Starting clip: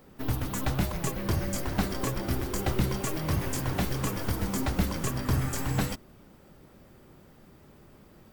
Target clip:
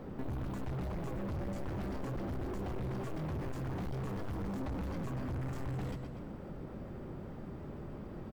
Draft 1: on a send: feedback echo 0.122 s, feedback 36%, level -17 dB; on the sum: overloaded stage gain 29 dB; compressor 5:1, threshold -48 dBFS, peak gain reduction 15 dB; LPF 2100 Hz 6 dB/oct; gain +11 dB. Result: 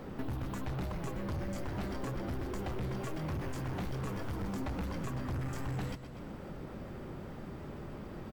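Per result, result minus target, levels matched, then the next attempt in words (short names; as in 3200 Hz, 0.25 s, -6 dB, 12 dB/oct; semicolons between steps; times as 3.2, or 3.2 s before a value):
2000 Hz band +3.5 dB; overloaded stage: distortion -4 dB
on a send: feedback echo 0.122 s, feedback 36%, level -17 dB; on the sum: overloaded stage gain 29 dB; compressor 5:1, threshold -48 dBFS, peak gain reduction 15 dB; LPF 800 Hz 6 dB/oct; gain +11 dB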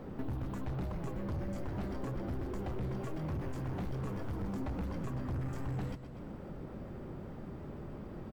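overloaded stage: distortion -4 dB
on a send: feedback echo 0.122 s, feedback 36%, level -17 dB; on the sum: overloaded stage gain 38.5 dB; compressor 5:1, threshold -48 dBFS, peak gain reduction 7.5 dB; LPF 800 Hz 6 dB/oct; gain +11 dB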